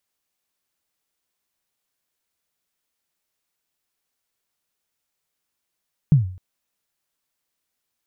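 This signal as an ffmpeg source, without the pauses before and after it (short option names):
-f lavfi -i "aevalsrc='0.447*pow(10,-3*t/0.48)*sin(2*PI*(160*0.134/log(92/160)*(exp(log(92/160)*min(t,0.134)/0.134)-1)+92*max(t-0.134,0)))':d=0.26:s=44100"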